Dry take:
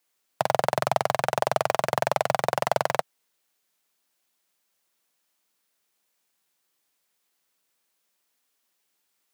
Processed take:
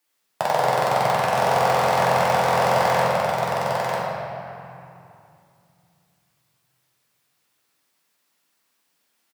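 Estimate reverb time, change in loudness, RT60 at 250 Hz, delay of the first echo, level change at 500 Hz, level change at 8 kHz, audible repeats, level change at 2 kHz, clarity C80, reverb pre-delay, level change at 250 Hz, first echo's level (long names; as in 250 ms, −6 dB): 2.6 s, +5.0 dB, 3.6 s, 946 ms, +5.5 dB, +4.0 dB, 1, +6.5 dB, −3.0 dB, 3 ms, +8.5 dB, −3.5 dB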